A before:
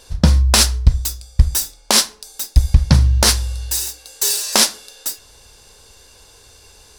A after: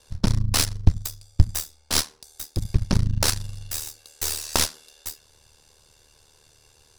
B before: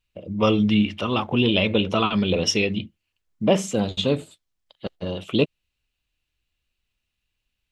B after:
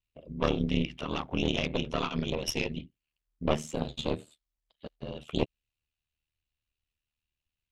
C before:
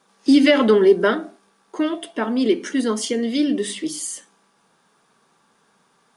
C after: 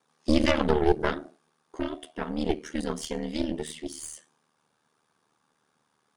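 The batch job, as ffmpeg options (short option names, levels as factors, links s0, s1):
-af "aeval=exprs='val(0)*sin(2*PI*38*n/s)':c=same,aeval=exprs='0.891*(cos(1*acos(clip(val(0)/0.891,-1,1)))-cos(1*PI/2))+0.251*(cos(2*acos(clip(val(0)/0.891,-1,1)))-cos(2*PI/2))+0.0708*(cos(3*acos(clip(val(0)/0.891,-1,1)))-cos(3*PI/2))+0.0891*(cos(6*acos(clip(val(0)/0.891,-1,1)))-cos(6*PI/2))':c=same,volume=0.531"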